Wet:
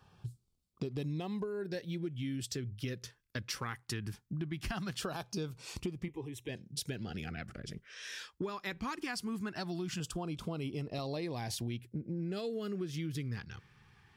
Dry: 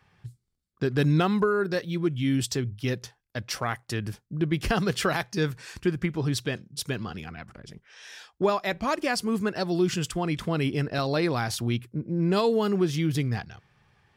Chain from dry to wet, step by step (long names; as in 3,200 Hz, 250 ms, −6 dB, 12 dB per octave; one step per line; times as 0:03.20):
auto-filter notch saw down 0.2 Hz 430–2,100 Hz
downward compressor 6 to 1, threshold −37 dBFS, peak gain reduction 17 dB
0:06.08–0:06.49: phaser with its sweep stopped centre 940 Hz, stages 8
level +1 dB